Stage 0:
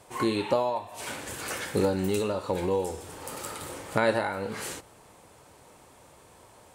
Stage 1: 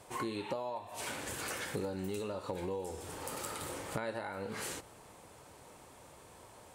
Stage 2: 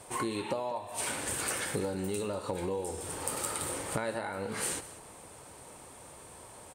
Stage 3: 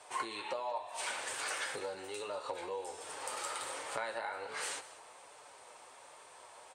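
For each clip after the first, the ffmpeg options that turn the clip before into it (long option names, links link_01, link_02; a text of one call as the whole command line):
ffmpeg -i in.wav -af "acompressor=threshold=-35dB:ratio=4,volume=-1.5dB" out.wav
ffmpeg -i in.wav -af "equalizer=frequency=8800:width=5.4:gain=11.5,aecho=1:1:192:0.15,volume=4dB" out.wav
ffmpeg -i in.wav -filter_complex "[0:a]flanger=delay=6.5:depth=2.2:regen=-44:speed=1.3:shape=triangular,acrossover=split=500 7600:gain=0.0708 1 0.112[link_01][link_02][link_03];[link_01][link_02][link_03]amix=inputs=3:normalize=0,volume=3dB" out.wav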